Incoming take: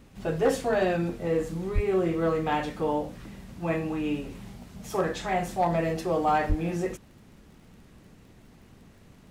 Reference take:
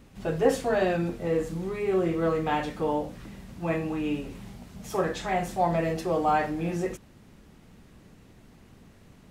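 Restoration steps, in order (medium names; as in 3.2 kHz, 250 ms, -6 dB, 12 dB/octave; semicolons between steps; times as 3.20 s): clip repair -16 dBFS; de-click; 1.74–1.86 s: high-pass 140 Hz 24 dB/octave; 6.48–6.60 s: high-pass 140 Hz 24 dB/octave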